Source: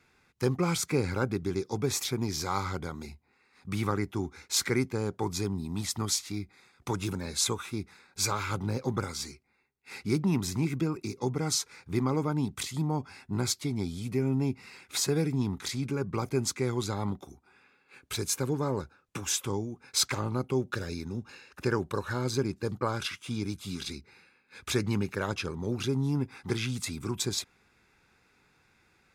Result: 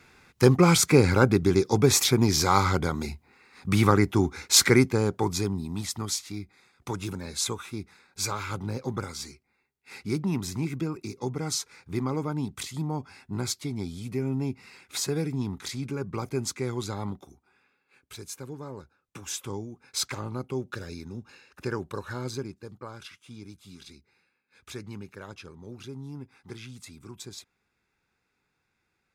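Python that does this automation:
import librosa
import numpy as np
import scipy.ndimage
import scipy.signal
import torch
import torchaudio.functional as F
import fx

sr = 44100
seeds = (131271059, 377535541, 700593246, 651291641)

y = fx.gain(x, sr, db=fx.line((4.66, 9.5), (6.02, -1.0), (17.01, -1.0), (18.15, -9.5), (18.83, -9.5), (19.51, -3.0), (22.28, -3.0), (22.68, -11.0)))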